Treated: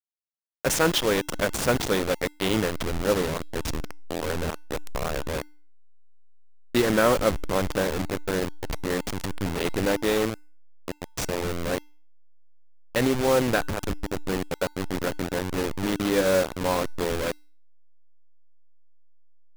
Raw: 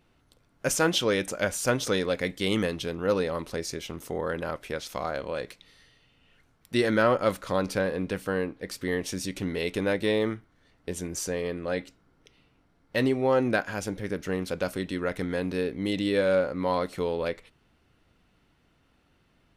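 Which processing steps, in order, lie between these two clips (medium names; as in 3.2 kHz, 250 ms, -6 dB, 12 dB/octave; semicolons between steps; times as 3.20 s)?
send-on-delta sampling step -24 dBFS; feedback comb 300 Hz, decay 0.45 s, harmonics odd, mix 40%; trim +7 dB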